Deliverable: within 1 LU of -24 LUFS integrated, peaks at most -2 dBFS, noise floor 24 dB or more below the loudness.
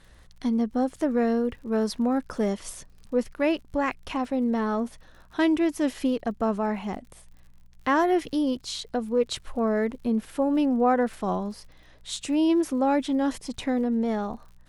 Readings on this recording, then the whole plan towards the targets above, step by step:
ticks 56/s; hum 60 Hz; harmonics up to 180 Hz; hum level -57 dBFS; loudness -26.5 LUFS; peak -12.0 dBFS; loudness target -24.0 LUFS
-> de-click; de-hum 60 Hz, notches 3; gain +2.5 dB

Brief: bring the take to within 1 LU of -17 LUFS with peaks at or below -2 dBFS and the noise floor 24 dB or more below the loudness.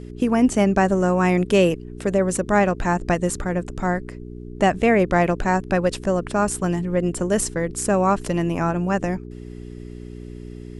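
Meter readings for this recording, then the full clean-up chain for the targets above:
hum 60 Hz; harmonics up to 420 Hz; hum level -35 dBFS; loudness -21.0 LUFS; peak -5.0 dBFS; loudness target -17.0 LUFS
-> de-hum 60 Hz, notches 7; gain +4 dB; limiter -2 dBFS

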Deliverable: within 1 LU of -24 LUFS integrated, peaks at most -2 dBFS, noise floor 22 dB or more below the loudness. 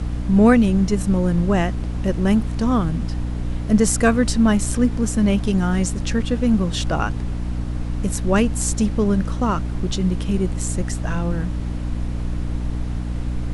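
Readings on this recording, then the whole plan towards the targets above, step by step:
hum 60 Hz; harmonics up to 300 Hz; hum level -23 dBFS; noise floor -26 dBFS; noise floor target -43 dBFS; loudness -20.5 LUFS; peak -3.0 dBFS; loudness target -24.0 LUFS
-> de-hum 60 Hz, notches 5; noise print and reduce 17 dB; gain -3.5 dB

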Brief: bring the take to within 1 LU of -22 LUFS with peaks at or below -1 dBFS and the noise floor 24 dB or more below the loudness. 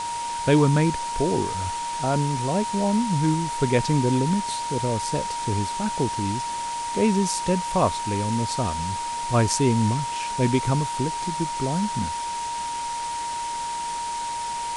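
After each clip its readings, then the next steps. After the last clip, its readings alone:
steady tone 940 Hz; tone level -27 dBFS; noise floor -29 dBFS; noise floor target -49 dBFS; loudness -24.5 LUFS; peak -7.0 dBFS; loudness target -22.0 LUFS
-> notch 940 Hz, Q 30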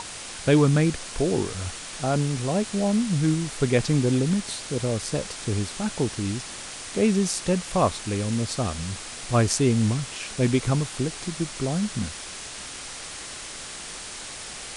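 steady tone none; noise floor -38 dBFS; noise floor target -50 dBFS
-> denoiser 12 dB, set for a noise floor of -38 dBFS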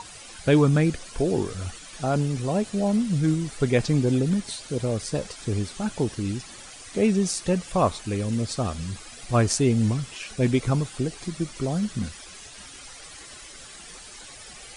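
noise floor -44 dBFS; noise floor target -50 dBFS
-> denoiser 6 dB, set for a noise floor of -44 dBFS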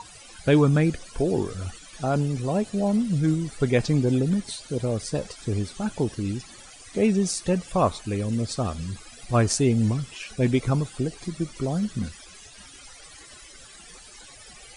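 noise floor -47 dBFS; noise floor target -50 dBFS
-> denoiser 6 dB, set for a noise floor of -47 dBFS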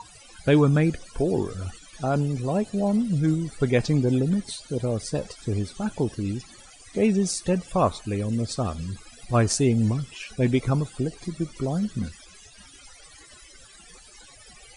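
noise floor -50 dBFS; loudness -25.5 LUFS; peak -7.0 dBFS; loudness target -22.0 LUFS
-> gain +3.5 dB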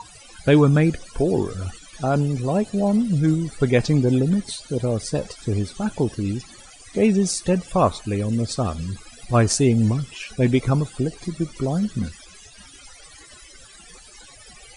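loudness -22.0 LUFS; peak -3.5 dBFS; noise floor -46 dBFS

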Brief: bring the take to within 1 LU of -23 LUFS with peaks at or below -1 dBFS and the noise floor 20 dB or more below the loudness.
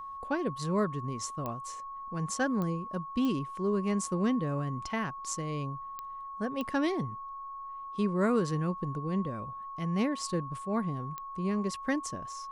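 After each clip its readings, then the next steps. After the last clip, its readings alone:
clicks 6; steady tone 1100 Hz; tone level -39 dBFS; loudness -33.0 LUFS; peak -16.5 dBFS; loudness target -23.0 LUFS
-> de-click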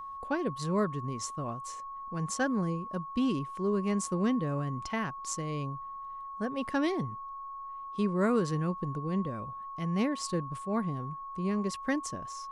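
clicks 0; steady tone 1100 Hz; tone level -39 dBFS
-> notch 1100 Hz, Q 30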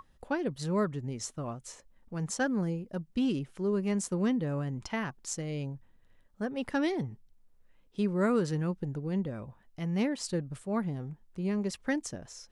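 steady tone none; loudness -33.0 LUFS; peak -17.5 dBFS; loudness target -23.0 LUFS
-> gain +10 dB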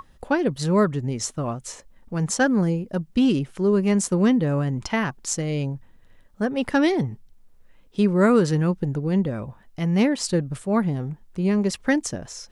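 loudness -23.0 LUFS; peak -7.5 dBFS; noise floor -54 dBFS

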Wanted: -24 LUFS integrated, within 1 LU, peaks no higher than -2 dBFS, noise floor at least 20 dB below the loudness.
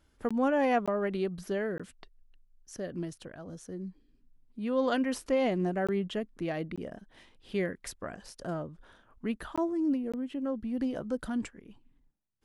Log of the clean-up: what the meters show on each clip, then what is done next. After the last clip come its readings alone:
dropouts 7; longest dropout 16 ms; loudness -32.5 LUFS; peak -16.0 dBFS; loudness target -24.0 LUFS
-> interpolate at 0.29/0.86/1.78/5.87/6.76/9.56/10.12, 16 ms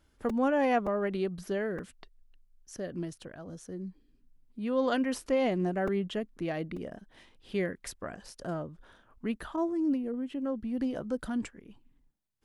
dropouts 0; loudness -32.5 LUFS; peak -16.0 dBFS; loudness target -24.0 LUFS
-> gain +8.5 dB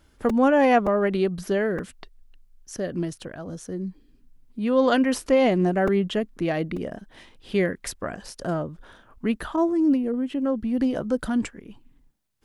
loudness -24.0 LUFS; peak -7.5 dBFS; noise floor -59 dBFS

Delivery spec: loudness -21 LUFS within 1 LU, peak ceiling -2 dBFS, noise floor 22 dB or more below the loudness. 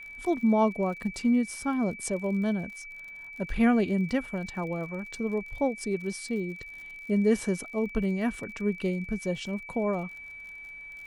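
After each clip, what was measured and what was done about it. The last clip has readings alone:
ticks 52/s; steady tone 2300 Hz; tone level -41 dBFS; loudness -29.0 LUFS; peak -12.5 dBFS; loudness target -21.0 LUFS
-> de-click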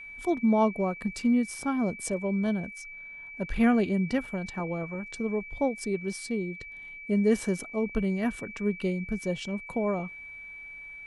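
ticks 0.18/s; steady tone 2300 Hz; tone level -41 dBFS
-> notch 2300 Hz, Q 30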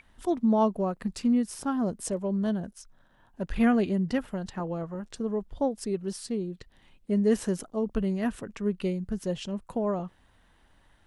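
steady tone none; loudness -29.5 LUFS; peak -13.0 dBFS; loudness target -21.0 LUFS
-> gain +8.5 dB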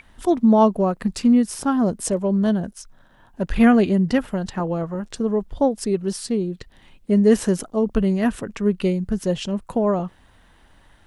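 loudness -21.0 LUFS; peak -4.5 dBFS; noise floor -54 dBFS

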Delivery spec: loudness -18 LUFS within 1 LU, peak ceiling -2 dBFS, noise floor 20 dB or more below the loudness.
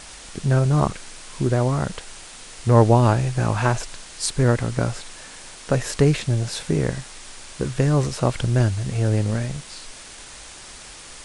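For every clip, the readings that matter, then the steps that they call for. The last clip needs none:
noise floor -41 dBFS; noise floor target -42 dBFS; loudness -21.5 LUFS; peak -3.0 dBFS; loudness target -18.0 LUFS
-> denoiser 6 dB, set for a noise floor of -41 dBFS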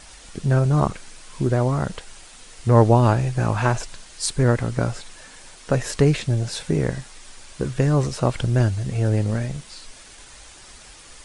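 noise floor -45 dBFS; loudness -21.5 LUFS; peak -3.0 dBFS; loudness target -18.0 LUFS
-> gain +3.5 dB; limiter -2 dBFS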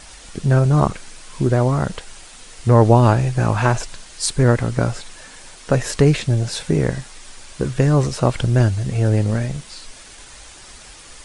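loudness -18.5 LUFS; peak -2.0 dBFS; noise floor -42 dBFS

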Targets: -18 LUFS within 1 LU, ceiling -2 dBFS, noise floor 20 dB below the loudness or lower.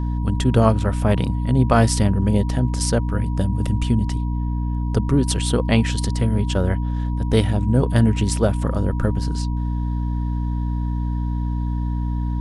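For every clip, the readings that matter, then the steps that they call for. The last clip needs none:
hum 60 Hz; harmonics up to 300 Hz; hum level -20 dBFS; steady tone 960 Hz; tone level -38 dBFS; loudness -21.0 LUFS; peak -2.5 dBFS; loudness target -18.0 LUFS
-> notches 60/120/180/240/300 Hz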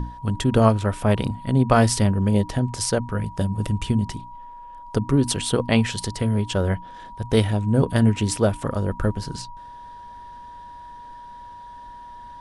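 hum none; steady tone 960 Hz; tone level -38 dBFS
-> notch 960 Hz, Q 30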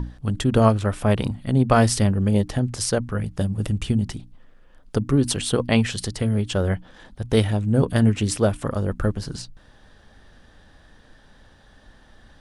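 steady tone none; loudness -22.0 LUFS; peak -4.0 dBFS; loudness target -18.0 LUFS
-> gain +4 dB; limiter -2 dBFS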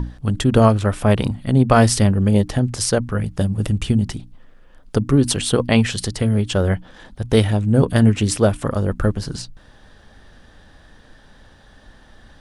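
loudness -18.5 LUFS; peak -2.0 dBFS; noise floor -49 dBFS

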